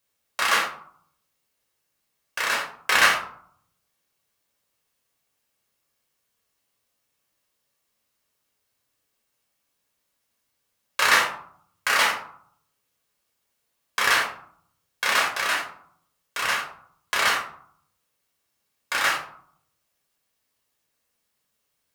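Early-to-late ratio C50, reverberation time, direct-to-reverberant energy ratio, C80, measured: 7.5 dB, 0.60 s, -1.5 dB, 11.5 dB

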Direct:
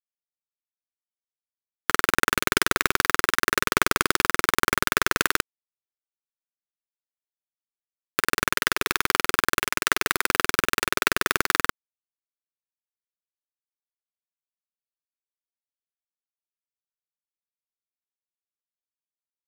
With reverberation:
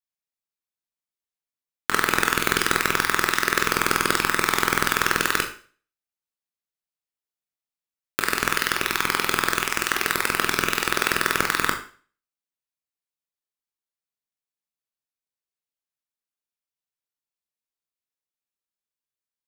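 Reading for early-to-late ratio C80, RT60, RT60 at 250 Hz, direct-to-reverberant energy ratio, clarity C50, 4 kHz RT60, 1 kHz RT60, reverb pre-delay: 13.5 dB, 0.40 s, 0.40 s, 3.0 dB, 9.5 dB, 0.40 s, 0.40 s, 19 ms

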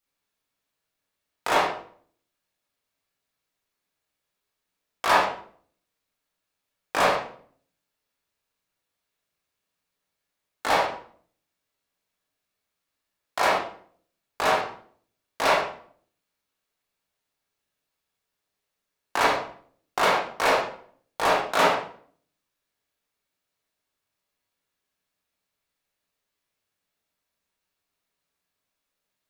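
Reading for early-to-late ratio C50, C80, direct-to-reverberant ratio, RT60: 2.5 dB, 7.5 dB, -6.0 dB, 0.55 s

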